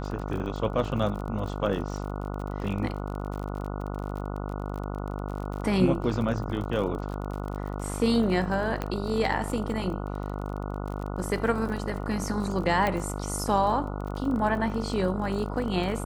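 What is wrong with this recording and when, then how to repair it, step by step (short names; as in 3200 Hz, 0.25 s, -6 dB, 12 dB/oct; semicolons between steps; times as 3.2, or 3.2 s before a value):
buzz 50 Hz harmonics 29 -33 dBFS
crackle 35/s -34 dBFS
8.82 pop -16 dBFS
12.87 pop -14 dBFS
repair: de-click; de-hum 50 Hz, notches 29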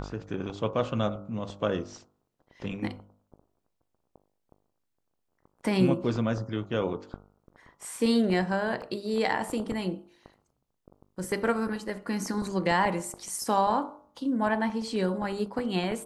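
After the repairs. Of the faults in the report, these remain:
8.82 pop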